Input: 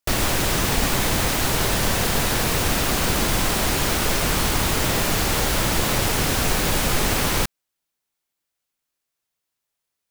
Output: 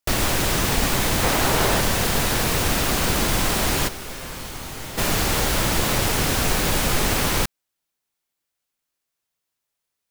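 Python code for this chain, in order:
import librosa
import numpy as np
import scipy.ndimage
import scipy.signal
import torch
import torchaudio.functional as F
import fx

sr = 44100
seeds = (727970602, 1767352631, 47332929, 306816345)

y = fx.peak_eq(x, sr, hz=720.0, db=5.0, octaves=2.8, at=(1.23, 1.81))
y = fx.comb_fb(y, sr, f0_hz=130.0, decay_s=1.8, harmonics='all', damping=0.0, mix_pct=80, at=(3.87, 4.97), fade=0.02)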